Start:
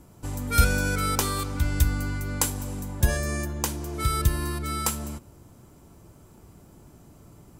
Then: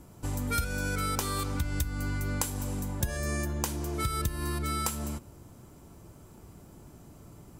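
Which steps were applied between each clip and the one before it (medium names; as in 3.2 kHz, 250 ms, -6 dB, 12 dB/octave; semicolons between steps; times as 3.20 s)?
compression 16:1, threshold -26 dBFS, peak gain reduction 15 dB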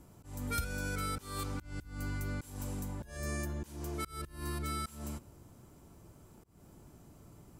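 slow attack 219 ms; trim -5.5 dB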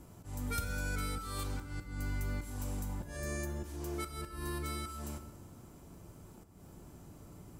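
in parallel at 0 dB: compression, threshold -44 dBFS, peak gain reduction 13.5 dB; on the sum: plate-style reverb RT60 1.3 s, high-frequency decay 0.8×, DRR 7.5 dB; trim -3.5 dB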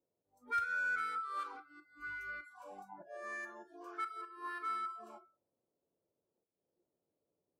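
spectral noise reduction 30 dB; auto-wah 500–1500 Hz, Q 3.4, up, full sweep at -37 dBFS; trim +8.5 dB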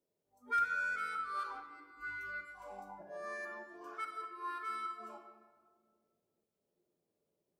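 simulated room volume 2200 m³, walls mixed, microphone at 1.3 m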